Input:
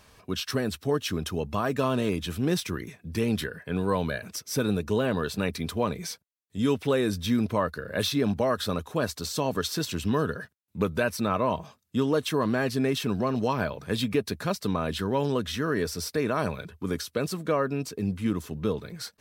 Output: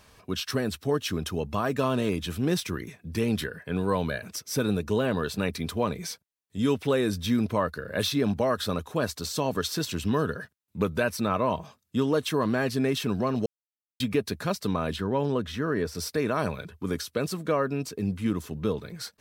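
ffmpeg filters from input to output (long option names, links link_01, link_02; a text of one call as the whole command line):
ffmpeg -i in.wav -filter_complex "[0:a]asettb=1/sr,asplit=3[link_01][link_02][link_03];[link_01]atrim=end=14.964[link_04];[link_02]atrim=start=14.96:end=15.95,asetpts=PTS-STARTPTS,afade=type=in:duration=0.004:curve=qsin,afade=type=out:start_time=0.986:duration=0.004:curve=qsin,highshelf=frequency=3100:gain=-9.5[link_05];[link_03]atrim=start=15.946[link_06];[link_04][link_05]acrossfade=duration=0.004:curve1=hsin:curve2=qsin[link_07];[link_07][link_06]acrossfade=duration=0.004:curve1=qsin:curve2=hsin,asplit=3[link_08][link_09][link_10];[link_08]atrim=end=13.46,asetpts=PTS-STARTPTS,afade=type=out:start_time=13.456:duration=0.004:curve=hsin[link_11];[link_09]atrim=start=13.46:end=14,asetpts=PTS-STARTPTS,volume=0[link_12];[link_10]atrim=start=14,asetpts=PTS-STARTPTS,afade=type=in:duration=0.004:curve=hsin[link_13];[link_11][link_12][link_13]concat=n=3:v=0:a=1" out.wav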